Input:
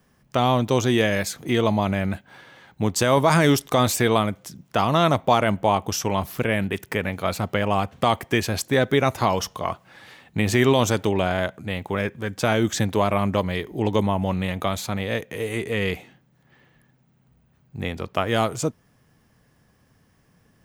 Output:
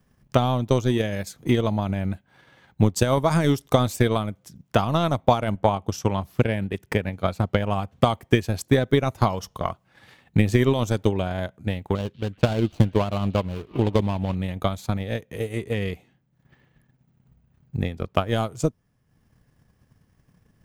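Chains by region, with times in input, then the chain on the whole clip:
5.55–7.57 HPF 41 Hz + high shelf 9800 Hz -7 dB
11.95–14.35 median filter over 25 samples + bell 3100 Hz +6.5 dB 1.4 oct + delay with a stepping band-pass 0.188 s, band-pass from 3600 Hz, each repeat -0.7 oct, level -11.5 dB
whole clip: dynamic EQ 1900 Hz, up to -3 dB, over -38 dBFS, Q 0.93; transient shaper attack +10 dB, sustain -6 dB; low shelf 160 Hz +9.5 dB; gain -6.5 dB

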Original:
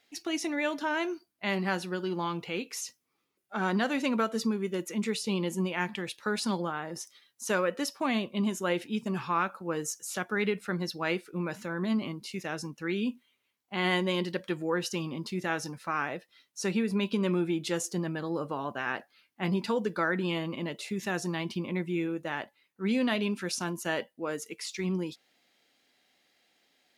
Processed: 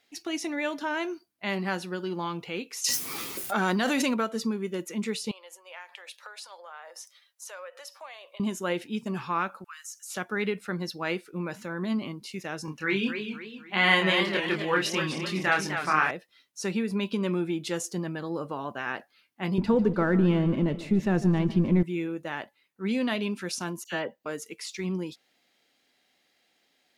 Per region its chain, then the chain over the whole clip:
2.84–4.14 high shelf 4600 Hz +9 dB + fast leveller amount 100%
5.31–8.4 compressor, threshold -37 dBFS + elliptic high-pass 540 Hz, stop band 80 dB
9.64–10.1 steep high-pass 1200 Hz 48 dB/oct + compressor 2:1, threshold -41 dBFS
12.65–16.11 bell 1900 Hz +8 dB 2.3 oct + doubler 26 ms -3.5 dB + warbling echo 0.255 s, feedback 41%, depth 160 cents, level -7.5 dB
19.58–21.83 G.711 law mismatch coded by mu + tilt -4 dB/oct + feedback echo 0.148 s, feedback 53%, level -15.5 dB
23.84–24.26 bell 10000 Hz -14 dB 0.31 oct + dispersion lows, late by 71 ms, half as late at 2500 Hz
whole clip: dry

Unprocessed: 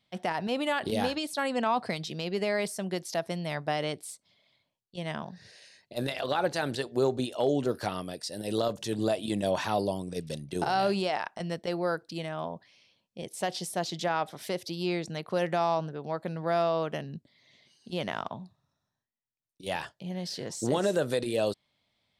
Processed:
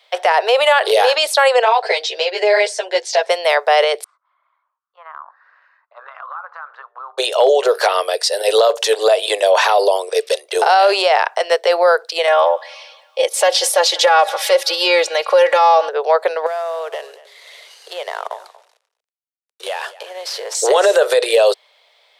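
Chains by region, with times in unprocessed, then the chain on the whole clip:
1.63–3.29 LPF 7800 Hz 24 dB/oct + bell 1200 Hz -15 dB 0.22 oct + ensemble effect
4.04–7.18 Butterworth band-pass 1200 Hz, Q 3.4 + compressor 2.5:1, threshold -55 dBFS
12.27–15.89 comb 3.6 ms, depth 96% + thinning echo 0.185 s, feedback 70%, high-pass 900 Hz, level -23.5 dB
16.46–20.55 CVSD 64 kbps + compressor 8:1, threshold -41 dBFS + echo 0.235 s -18.5 dB
whole clip: steep high-pass 430 Hz 72 dB/oct; high shelf 5500 Hz -6.5 dB; maximiser +26 dB; gain -3.5 dB

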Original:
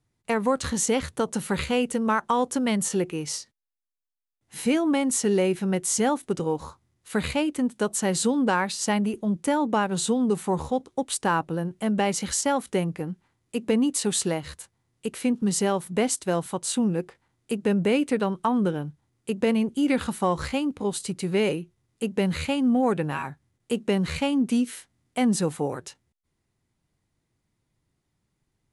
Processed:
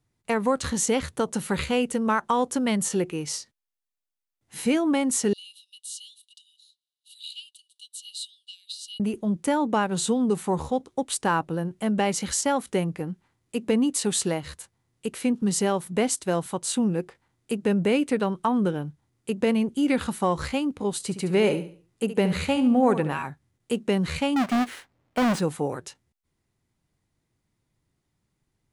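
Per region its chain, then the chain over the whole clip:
5.33–9 rippled Chebyshev high-pass 2800 Hz, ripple 9 dB + resonant high shelf 5700 Hz -7.5 dB, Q 1.5
21–23.14 bell 690 Hz +3 dB 2.5 oct + feedback echo 70 ms, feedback 34%, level -11.5 dB
24.36–25.4 half-waves squared off + overdrive pedal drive 6 dB, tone 1800 Hz, clips at -13.5 dBFS
whole clip: dry

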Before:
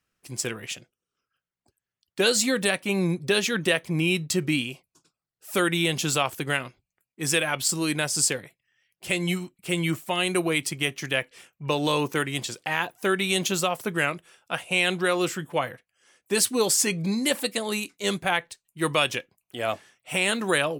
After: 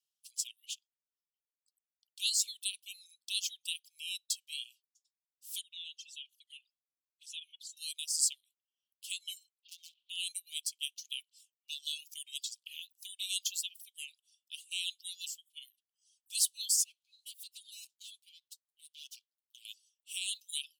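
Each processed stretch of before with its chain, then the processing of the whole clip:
5.61–7.77 comb 4.5 ms, depth 63% + envelope flanger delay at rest 5.6 ms, full sweep at -21.5 dBFS + band-pass 790 Hz, Q 0.6
9.59–10.1 steep low-pass 3200 Hz + hard clip -24.5 dBFS + spectral compressor 2:1
16.84–19.65 minimum comb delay 7.8 ms + compressor 5:1, threshold -35 dBFS + three-band expander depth 70%
whole clip: reverb removal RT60 1.2 s; steep high-pass 2900 Hz 72 dB/oct; gain -5.5 dB

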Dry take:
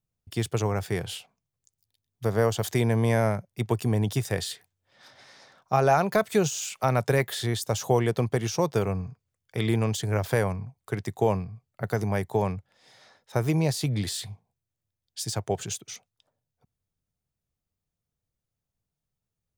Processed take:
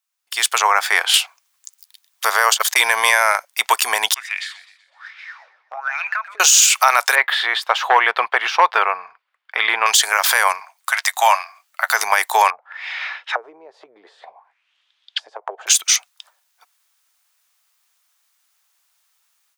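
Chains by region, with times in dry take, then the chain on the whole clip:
0.58–1.14 high shelf 3900 Hz -11.5 dB + notch 2800 Hz, Q 20
2.54–3.35 gate -24 dBFS, range -50 dB + notch 730 Hz, Q 14 + fast leveller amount 70%
4.14–6.4 wah 1.2 Hz 330–2500 Hz, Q 7.7 + compressor, threshold -44 dBFS + warbling echo 0.125 s, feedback 45%, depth 138 cents, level -16 dB
7.15–9.86 overloaded stage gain 14.5 dB + air absorption 440 m
10.6–11.94 elliptic high-pass 590 Hz, stop band 50 dB + doubler 12 ms -11.5 dB
12.5–15.67 compressor, threshold -37 dBFS + envelope low-pass 380–3500 Hz down, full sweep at -36 dBFS
whole clip: HPF 1000 Hz 24 dB/oct; AGC gain up to 15 dB; maximiser +12 dB; gain -1 dB

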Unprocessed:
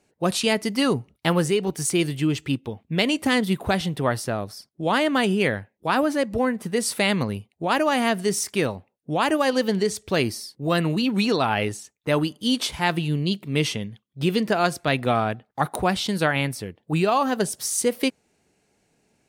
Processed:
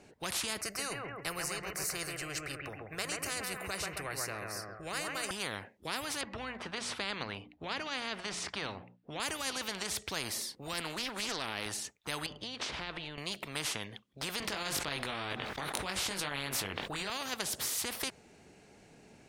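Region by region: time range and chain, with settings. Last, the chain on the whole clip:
0.61–5.31 fixed phaser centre 910 Hz, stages 6 + analogue delay 0.134 s, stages 2048, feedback 37%, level -6 dB
6.21–9.2 LPF 3200 Hz + notches 60/120/180/240/300 Hz
10.73–11.66 resonant low shelf 180 Hz -6.5 dB, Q 1.5 + Doppler distortion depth 0.15 ms
12.26–13.18 LPF 3500 Hz + compressor 10:1, threshold -29 dBFS + de-hum 52.2 Hz, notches 3
14.4–17.1 high shelf 5100 Hz -11.5 dB + doubler 21 ms -3 dB + fast leveller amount 70%
whole clip: high shelf 7900 Hz -11 dB; limiter -13.5 dBFS; spectral compressor 4:1; gain +2.5 dB

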